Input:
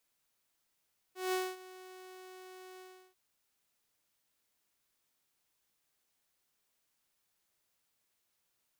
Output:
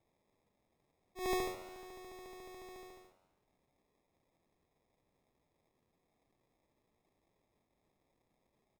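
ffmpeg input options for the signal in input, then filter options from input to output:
-f lavfi -i "aevalsrc='0.0422*(2*mod(371*t,1)-1)':duration=1.997:sample_rate=44100,afade=type=in:duration=0.176,afade=type=out:start_time=0.176:duration=0.235:silence=0.106,afade=type=out:start_time=1.64:duration=0.357"
-filter_complex "[0:a]acrusher=samples=30:mix=1:aa=0.000001,asplit=7[link_01][link_02][link_03][link_04][link_05][link_06][link_07];[link_02]adelay=84,afreqshift=93,volume=-16.5dB[link_08];[link_03]adelay=168,afreqshift=186,volume=-20.8dB[link_09];[link_04]adelay=252,afreqshift=279,volume=-25.1dB[link_10];[link_05]adelay=336,afreqshift=372,volume=-29.4dB[link_11];[link_06]adelay=420,afreqshift=465,volume=-33.7dB[link_12];[link_07]adelay=504,afreqshift=558,volume=-38dB[link_13];[link_01][link_08][link_09][link_10][link_11][link_12][link_13]amix=inputs=7:normalize=0"

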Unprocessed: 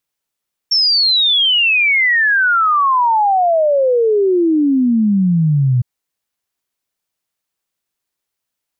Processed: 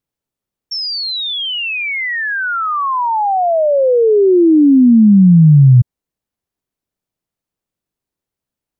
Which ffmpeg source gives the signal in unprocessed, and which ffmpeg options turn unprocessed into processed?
-f lavfi -i "aevalsrc='0.316*clip(min(t,5.11-t)/0.01,0,1)*sin(2*PI*5500*5.11/log(120/5500)*(exp(log(120/5500)*t/5.11)-1))':duration=5.11:sample_rate=44100"
-af "tiltshelf=frequency=650:gain=8"

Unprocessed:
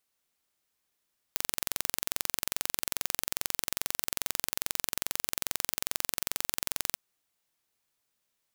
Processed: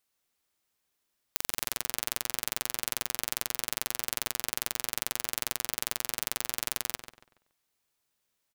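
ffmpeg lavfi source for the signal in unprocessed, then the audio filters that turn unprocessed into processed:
-f lavfi -i "aevalsrc='0.841*eq(mod(n,1969),0)':duration=5.62:sample_rate=44100"
-filter_complex "[0:a]asplit=2[link_01][link_02];[link_02]adelay=142,lowpass=frequency=3000:poles=1,volume=-7dB,asplit=2[link_03][link_04];[link_04]adelay=142,lowpass=frequency=3000:poles=1,volume=0.34,asplit=2[link_05][link_06];[link_06]adelay=142,lowpass=frequency=3000:poles=1,volume=0.34,asplit=2[link_07][link_08];[link_08]adelay=142,lowpass=frequency=3000:poles=1,volume=0.34[link_09];[link_01][link_03][link_05][link_07][link_09]amix=inputs=5:normalize=0"

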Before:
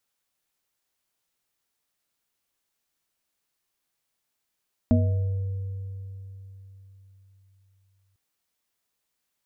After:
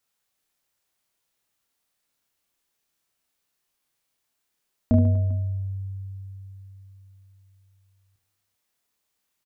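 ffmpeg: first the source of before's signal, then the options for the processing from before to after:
-f lavfi -i "aevalsrc='0.126*pow(10,-3*t/4.01)*sin(2*PI*96.8*t)+0.2*pow(10,-3*t/0.36)*sin(2*PI*240*t)+0.0211*pow(10,-3*t/2.52)*sin(2*PI*482*t)+0.0501*pow(10,-3*t/0.79)*sin(2*PI*632*t)':duration=3.25:sample_rate=44100"
-af "aecho=1:1:30|75|142.5|243.8|395.6:0.631|0.398|0.251|0.158|0.1"

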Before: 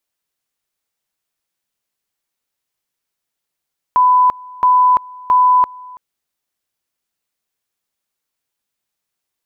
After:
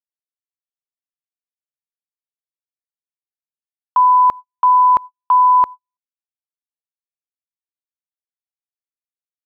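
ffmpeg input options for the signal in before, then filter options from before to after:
-f lavfi -i "aevalsrc='pow(10,(-7.5-24*gte(mod(t,0.67),0.34))/20)*sin(2*PI*1000*t)':duration=2.01:sample_rate=44100"
-af "agate=range=-55dB:threshold=-23dB:ratio=16:detection=peak"

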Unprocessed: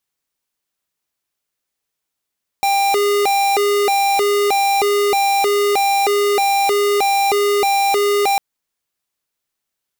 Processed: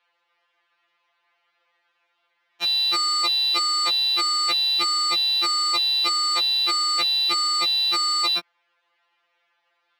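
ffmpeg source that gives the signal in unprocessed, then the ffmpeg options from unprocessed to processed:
-f lavfi -i "aevalsrc='0.168*(2*lt(mod((601*t+193/1.6*(0.5-abs(mod(1.6*t,1)-0.5))),1),0.5)-1)':duration=5.75:sample_rate=44100"
-filter_complex "[0:a]acrossover=split=110|520|3300[link_01][link_02][link_03][link_04];[link_03]aeval=exprs='0.211*sin(PI/2*7.94*val(0)/0.211)':channel_layout=same[link_05];[link_01][link_02][link_05][link_04]amix=inputs=4:normalize=0,acrossover=split=190 5200:gain=0.0794 1 0.0794[link_06][link_07][link_08];[link_06][link_07][link_08]amix=inputs=3:normalize=0,afftfilt=real='re*2.83*eq(mod(b,8),0)':imag='im*2.83*eq(mod(b,8),0)':win_size=2048:overlap=0.75"

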